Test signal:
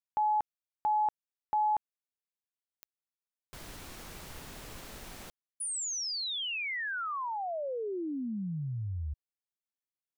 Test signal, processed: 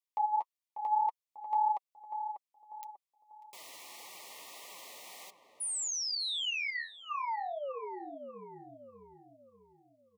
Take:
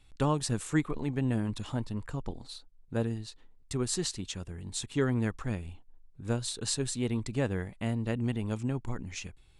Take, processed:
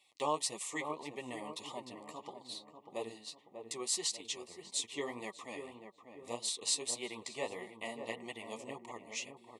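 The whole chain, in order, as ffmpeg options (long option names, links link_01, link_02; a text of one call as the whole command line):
ffmpeg -i in.wav -filter_complex "[0:a]highpass=670,flanger=delay=5.1:depth=8.5:regen=18:speed=1.7:shape=sinusoidal,asuperstop=centerf=1500:order=12:qfactor=2.4,asplit=2[link_01][link_02];[link_02]adelay=593,lowpass=frequency=1100:poles=1,volume=-7dB,asplit=2[link_03][link_04];[link_04]adelay=593,lowpass=frequency=1100:poles=1,volume=0.48,asplit=2[link_05][link_06];[link_06]adelay=593,lowpass=frequency=1100:poles=1,volume=0.48,asplit=2[link_07][link_08];[link_08]adelay=593,lowpass=frequency=1100:poles=1,volume=0.48,asplit=2[link_09][link_10];[link_10]adelay=593,lowpass=frequency=1100:poles=1,volume=0.48,asplit=2[link_11][link_12];[link_12]adelay=593,lowpass=frequency=1100:poles=1,volume=0.48[link_13];[link_01][link_03][link_05][link_07][link_09][link_11][link_13]amix=inputs=7:normalize=0,volume=3.5dB" out.wav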